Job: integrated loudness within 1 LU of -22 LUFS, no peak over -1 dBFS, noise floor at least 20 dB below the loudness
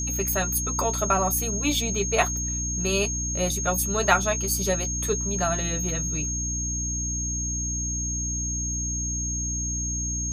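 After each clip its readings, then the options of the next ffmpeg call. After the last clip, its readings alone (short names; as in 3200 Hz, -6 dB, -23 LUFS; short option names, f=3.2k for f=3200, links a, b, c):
hum 60 Hz; harmonics up to 300 Hz; hum level -29 dBFS; steady tone 6500 Hz; tone level -28 dBFS; loudness -25.0 LUFS; peak -4.0 dBFS; loudness target -22.0 LUFS
-> -af "bandreject=f=60:t=h:w=4,bandreject=f=120:t=h:w=4,bandreject=f=180:t=h:w=4,bandreject=f=240:t=h:w=4,bandreject=f=300:t=h:w=4"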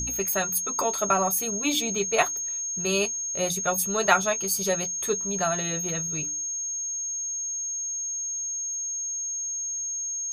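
hum none; steady tone 6500 Hz; tone level -28 dBFS
-> -af "bandreject=f=6.5k:w=30"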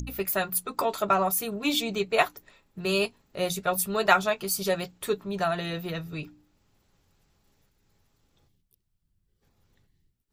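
steady tone none; loudness -27.5 LUFS; peak -4.5 dBFS; loudness target -22.0 LUFS
-> -af "volume=5.5dB,alimiter=limit=-1dB:level=0:latency=1"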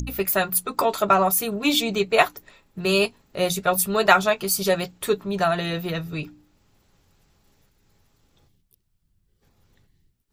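loudness -22.0 LUFS; peak -1.0 dBFS; noise floor -70 dBFS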